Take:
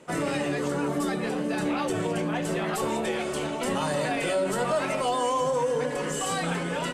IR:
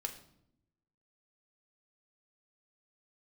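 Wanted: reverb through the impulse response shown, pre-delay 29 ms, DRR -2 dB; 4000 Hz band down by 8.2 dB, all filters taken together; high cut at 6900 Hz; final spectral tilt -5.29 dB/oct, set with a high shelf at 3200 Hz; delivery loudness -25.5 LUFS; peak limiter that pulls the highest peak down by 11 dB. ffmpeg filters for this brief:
-filter_complex "[0:a]lowpass=6.9k,highshelf=f=3.2k:g=-7.5,equalizer=f=4k:t=o:g=-6,alimiter=level_in=4dB:limit=-24dB:level=0:latency=1,volume=-4dB,asplit=2[a][b];[1:a]atrim=start_sample=2205,adelay=29[c];[b][c]afir=irnorm=-1:irlink=0,volume=2.5dB[d];[a][d]amix=inputs=2:normalize=0,volume=6dB"

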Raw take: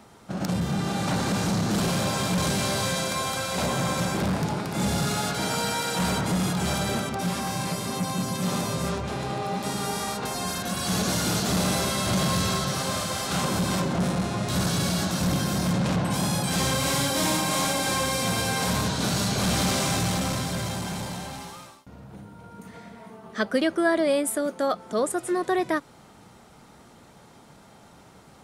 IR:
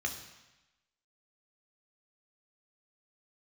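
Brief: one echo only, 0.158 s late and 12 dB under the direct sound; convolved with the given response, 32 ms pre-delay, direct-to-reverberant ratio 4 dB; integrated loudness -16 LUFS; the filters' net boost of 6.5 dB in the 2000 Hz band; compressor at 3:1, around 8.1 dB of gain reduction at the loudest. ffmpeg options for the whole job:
-filter_complex "[0:a]equalizer=f=2k:t=o:g=8.5,acompressor=threshold=-27dB:ratio=3,aecho=1:1:158:0.251,asplit=2[a][b];[1:a]atrim=start_sample=2205,adelay=32[c];[b][c]afir=irnorm=-1:irlink=0,volume=-8dB[d];[a][d]amix=inputs=2:normalize=0,volume=11dB"

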